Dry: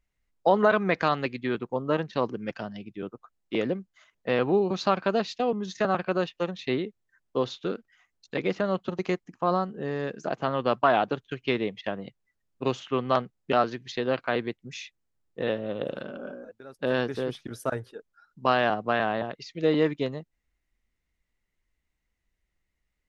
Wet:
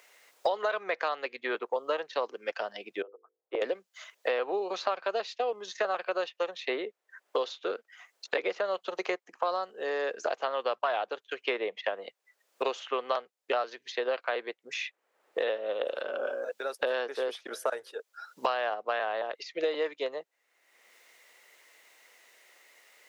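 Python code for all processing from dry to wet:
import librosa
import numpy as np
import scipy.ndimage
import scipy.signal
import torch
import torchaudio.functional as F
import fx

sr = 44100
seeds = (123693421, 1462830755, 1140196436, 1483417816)

y = fx.chain(x, sr, fx.ladder_bandpass(hz=570.0, resonance_pct=35),
    fx.hum_notches(base_hz=50, count=10),
    fx.upward_expand(threshold_db=-55.0, expansion=1.5), at=(3.02, 3.62))
y = scipy.signal.sosfilt(scipy.signal.cheby1(3, 1.0, 490.0, 'highpass', fs=sr, output='sos'), y)
y = fx.band_squash(y, sr, depth_pct=100)
y = y * 10.0 ** (-2.5 / 20.0)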